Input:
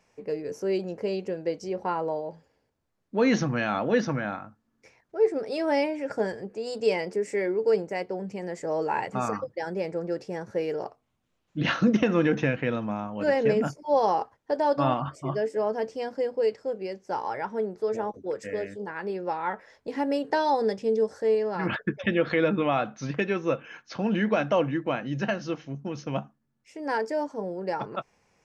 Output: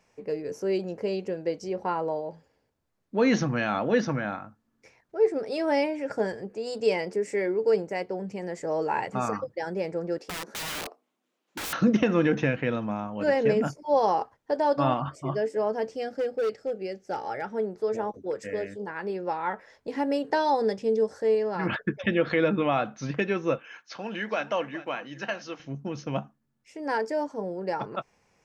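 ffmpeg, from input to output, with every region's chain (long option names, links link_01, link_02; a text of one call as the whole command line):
ffmpeg -i in.wav -filter_complex "[0:a]asettb=1/sr,asplit=3[link_01][link_02][link_03];[link_01]atrim=end=10.184[link_04];[link_02]atrim=start=10.18:end=11.73,asetpts=PTS-STARTPTS,afade=type=in:duration=0.004:curve=qsin,afade=type=out:start_time=1.546:duration=0.004:curve=qsin,highpass=frequency=240:width=0.5412,highpass=frequency=240:width=1.3066,adynamicequalizer=threshold=0.00794:dfrequency=340:dqfactor=0.99:tfrequency=340:tqfactor=0.99:attack=5:release=100:ratio=0.375:range=3:mode=boostabove:tftype=bell,aeval=exprs='(mod(28.2*val(0)+1,2)-1)/28.2':channel_layout=same[link_05];[link_03]atrim=start=11.726[link_06];[link_04][link_05]acrossfade=duration=0.004:curve1=hsin:curve2=qsin[link_07];[link_07][link_06]acrossfade=duration=0.004:curve1=qsin:curve2=hsin,asettb=1/sr,asplit=3[link_08][link_09][link_10];[link_08]atrim=end=15.954[link_11];[link_09]atrim=start=15.95:end=17.53,asetpts=PTS-STARTPTS,afade=type=in:duration=0.004:curve=qsin,afade=type=out:start_time=1.576:duration=0.004:curve=qsin,asuperstop=centerf=1000:order=4:qfactor=3.6,asoftclip=type=hard:threshold=-23dB[link_12];[link_10]atrim=start=17.526[link_13];[link_11][link_12]acrossfade=duration=0.004:curve1=hsin:curve2=qsin[link_14];[link_14][link_13]acrossfade=duration=0.004:curve1=qsin:curve2=hsin,asettb=1/sr,asplit=3[link_15][link_16][link_17];[link_15]atrim=end=23.584[link_18];[link_16]atrim=start=23.58:end=25.6,asetpts=PTS-STARTPTS,afade=type=in:duration=0.004:curve=qsin,afade=type=out:start_time=2.016:duration=0.004:curve=qsin,highpass=frequency=830:poles=1,aecho=1:1:414:0.15,atrim=end_sample=89082[link_19];[link_17]atrim=start=25.596[link_20];[link_18][link_19]acrossfade=duration=0.004:curve1=hsin:curve2=qsin[link_21];[link_21][link_20]acrossfade=duration=0.004:curve1=qsin:curve2=hsin" out.wav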